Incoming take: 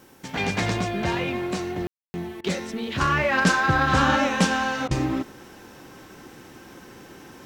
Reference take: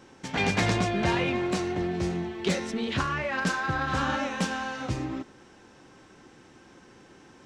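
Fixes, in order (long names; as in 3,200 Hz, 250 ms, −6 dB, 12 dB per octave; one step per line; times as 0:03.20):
ambience match 0:01.87–0:02.14
repair the gap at 0:02.41/0:04.88, 29 ms
downward expander −38 dBFS, range −21 dB
level correction −8 dB, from 0:03.01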